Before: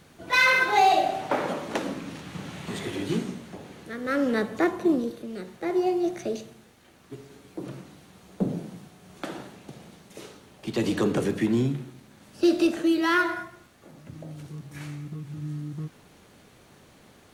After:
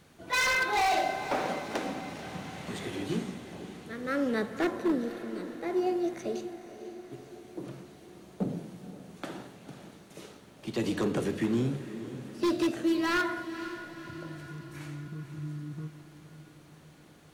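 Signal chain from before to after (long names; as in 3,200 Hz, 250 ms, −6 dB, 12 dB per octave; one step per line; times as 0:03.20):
wave folding −16.5 dBFS
feedback delay with all-pass diffusion 515 ms, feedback 56%, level −12 dB
level −4.5 dB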